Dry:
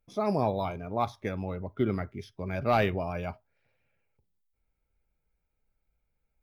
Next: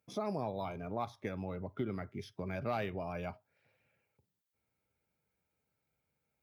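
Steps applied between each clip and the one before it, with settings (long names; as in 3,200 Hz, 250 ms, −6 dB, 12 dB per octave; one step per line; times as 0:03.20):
downward compressor 2.5 to 1, threshold −40 dBFS, peak gain reduction 13.5 dB
high-pass filter 92 Hz 24 dB per octave
level +1.5 dB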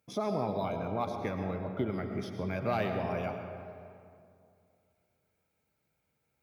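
comb and all-pass reverb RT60 2.4 s, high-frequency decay 0.45×, pre-delay 65 ms, DRR 4.5 dB
level +4 dB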